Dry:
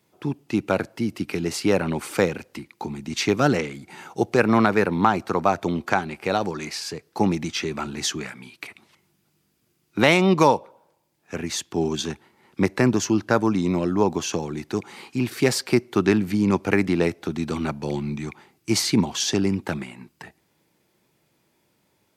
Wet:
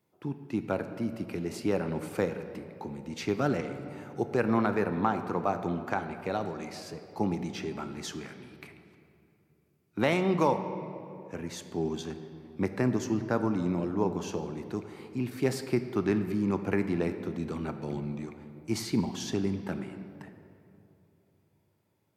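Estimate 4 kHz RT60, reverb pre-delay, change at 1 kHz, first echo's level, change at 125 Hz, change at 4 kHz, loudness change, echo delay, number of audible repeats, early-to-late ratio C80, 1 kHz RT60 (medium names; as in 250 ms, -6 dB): 1.6 s, 8 ms, -9.0 dB, no echo, -7.0 dB, -14.0 dB, -8.5 dB, no echo, no echo, 10.5 dB, 2.6 s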